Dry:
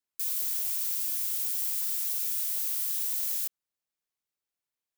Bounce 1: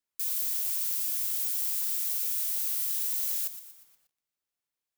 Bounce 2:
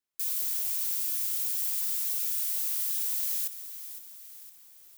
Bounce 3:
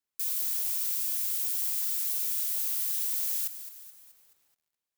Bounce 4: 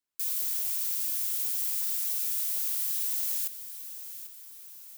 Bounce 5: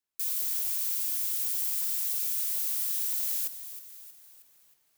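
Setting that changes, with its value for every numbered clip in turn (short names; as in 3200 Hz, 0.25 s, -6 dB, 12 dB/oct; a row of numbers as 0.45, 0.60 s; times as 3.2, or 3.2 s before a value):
lo-fi delay, time: 0.119, 0.511, 0.214, 0.793, 0.316 s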